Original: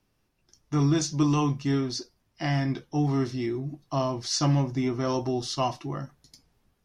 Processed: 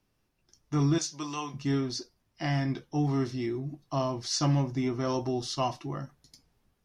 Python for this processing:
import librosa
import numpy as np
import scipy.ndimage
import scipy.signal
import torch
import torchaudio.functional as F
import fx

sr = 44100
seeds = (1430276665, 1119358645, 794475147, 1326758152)

y = fx.highpass(x, sr, hz=1100.0, slope=6, at=(0.98, 1.54))
y = y * 10.0 ** (-2.5 / 20.0)